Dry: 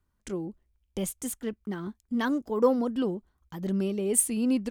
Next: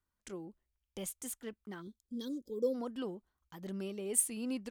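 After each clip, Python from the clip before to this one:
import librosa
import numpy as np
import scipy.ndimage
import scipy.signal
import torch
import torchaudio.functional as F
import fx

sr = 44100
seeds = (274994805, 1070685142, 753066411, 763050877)

y = fx.spec_box(x, sr, start_s=1.82, length_s=0.93, low_hz=560.0, high_hz=3200.0, gain_db=-24)
y = fx.low_shelf(y, sr, hz=430.0, db=-8.5)
y = y * 10.0 ** (-6.0 / 20.0)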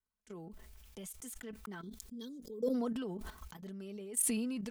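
y = fx.level_steps(x, sr, step_db=16)
y = y + 0.56 * np.pad(y, (int(4.6 * sr / 1000.0), 0))[:len(y)]
y = fx.sustainer(y, sr, db_per_s=22.0)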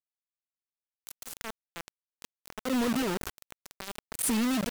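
y = fx.auto_swell(x, sr, attack_ms=131.0)
y = fx.quant_companded(y, sr, bits=2)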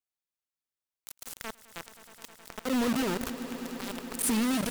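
y = fx.echo_swell(x, sr, ms=105, loudest=5, wet_db=-17.0)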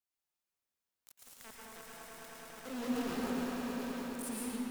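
y = fx.fade_out_tail(x, sr, length_s=1.35)
y = 10.0 ** (-37.0 / 20.0) * np.tanh(y / 10.0 ** (-37.0 / 20.0))
y = fx.rev_plate(y, sr, seeds[0], rt60_s=2.5, hf_ratio=0.4, predelay_ms=100, drr_db=-4.5)
y = y * 10.0 ** (-2.5 / 20.0)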